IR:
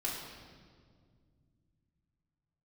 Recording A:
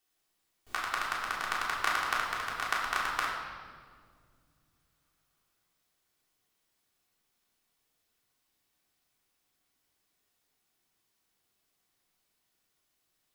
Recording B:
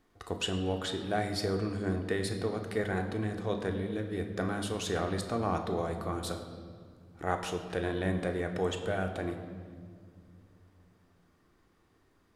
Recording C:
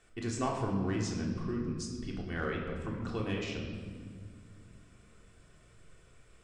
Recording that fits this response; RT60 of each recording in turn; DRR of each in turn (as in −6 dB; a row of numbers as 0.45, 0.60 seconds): A; 1.9 s, non-exponential decay, 1.9 s; −6.0, 4.0, −1.5 decibels